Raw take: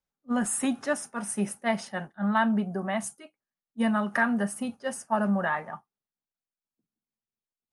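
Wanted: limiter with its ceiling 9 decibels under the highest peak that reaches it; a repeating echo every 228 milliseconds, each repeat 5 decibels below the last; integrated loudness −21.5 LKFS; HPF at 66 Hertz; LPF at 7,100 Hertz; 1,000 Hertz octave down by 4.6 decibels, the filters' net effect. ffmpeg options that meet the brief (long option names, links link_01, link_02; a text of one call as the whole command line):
ffmpeg -i in.wav -af "highpass=66,lowpass=7100,equalizer=frequency=1000:width_type=o:gain=-6,alimiter=level_in=1dB:limit=-24dB:level=0:latency=1,volume=-1dB,aecho=1:1:228|456|684|912|1140|1368|1596:0.562|0.315|0.176|0.0988|0.0553|0.031|0.0173,volume=11.5dB" out.wav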